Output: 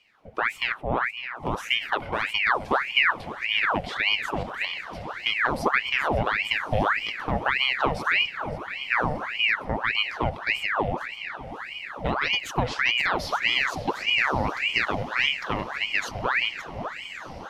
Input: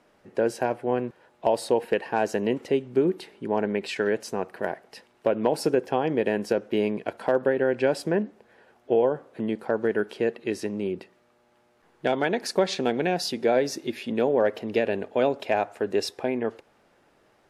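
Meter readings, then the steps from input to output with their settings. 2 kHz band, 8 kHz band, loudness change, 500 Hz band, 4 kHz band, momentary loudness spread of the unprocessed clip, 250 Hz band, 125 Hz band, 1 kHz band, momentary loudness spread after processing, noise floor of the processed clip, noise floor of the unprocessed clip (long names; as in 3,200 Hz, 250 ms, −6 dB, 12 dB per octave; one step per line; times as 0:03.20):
+11.5 dB, −4.0 dB, +1.5 dB, −9.0 dB, +11.5 dB, 8 LU, −7.0 dB, +3.5 dB, +4.0 dB, 10 LU, −40 dBFS, −63 dBFS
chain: feedback delay that plays each chunk backwards 277 ms, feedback 41%, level −10.5 dB
octave-band graphic EQ 125/250/500/1,000/2,000/8,000 Hz +11/+7/−3/−11/+3/−8 dB
feedback delay with all-pass diffusion 1,159 ms, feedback 60%, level −12 dB
ring modulator whose carrier an LFO sweeps 1,500 Hz, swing 80%, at 1.7 Hz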